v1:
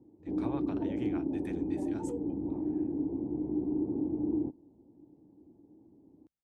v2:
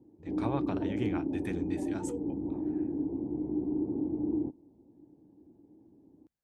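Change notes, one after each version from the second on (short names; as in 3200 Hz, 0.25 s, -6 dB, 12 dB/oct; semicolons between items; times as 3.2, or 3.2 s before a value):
speech +6.5 dB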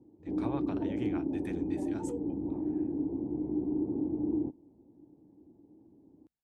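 speech -4.5 dB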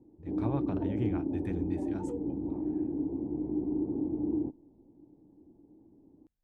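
speech: add tilt -2.5 dB/oct; master: remove HPF 60 Hz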